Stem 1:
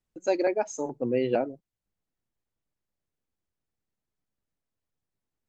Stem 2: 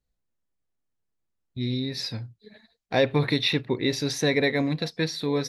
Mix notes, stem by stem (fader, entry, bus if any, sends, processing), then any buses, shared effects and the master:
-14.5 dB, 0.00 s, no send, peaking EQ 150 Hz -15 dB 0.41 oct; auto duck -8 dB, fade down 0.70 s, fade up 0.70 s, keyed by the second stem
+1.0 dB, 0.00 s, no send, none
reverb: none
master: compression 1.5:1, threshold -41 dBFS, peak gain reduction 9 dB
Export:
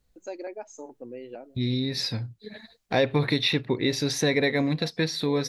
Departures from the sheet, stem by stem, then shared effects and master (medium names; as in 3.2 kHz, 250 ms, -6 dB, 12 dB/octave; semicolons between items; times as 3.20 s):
stem 1 -14.5 dB -> -6.5 dB; stem 2 +1.0 dB -> +11.0 dB